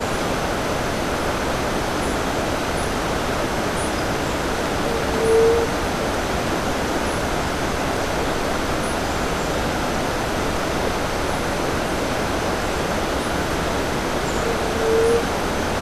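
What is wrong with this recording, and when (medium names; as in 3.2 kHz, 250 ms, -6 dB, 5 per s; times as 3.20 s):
7.97 s: dropout 2.7 ms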